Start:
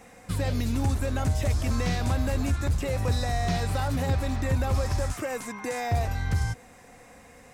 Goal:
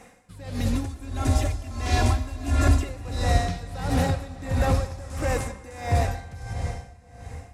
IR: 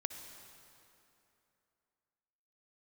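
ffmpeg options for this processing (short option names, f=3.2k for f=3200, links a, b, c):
-filter_complex "[0:a]asettb=1/sr,asplit=3[a][b][c];[a]atrim=end=0.734[d];[b]atrim=start=0.73:end=2.89,asetpts=PTS-STARTPTS,afade=t=in:d=0.004:c=qsin,afade=t=out:st=2.156:d=0.004:c=qsin,aecho=1:1:2.9:0.92,atrim=end_sample=95256[e];[c]atrim=start=2.886[f];[d][e]acrossfade=d=0.004:c1=hsin:c2=qsin[g];[g][f]acrossfade=d=0.004:c1=qsin:c2=hsin[h];[1:a]atrim=start_sample=2205,asetrate=23373,aresample=44100[i];[h][i]afir=irnorm=-1:irlink=0,dynaudnorm=f=240:g=13:m=3dB,aeval=exprs='val(0)*pow(10,-18*(0.5-0.5*cos(2*PI*1.5*n/s))/20)':c=same"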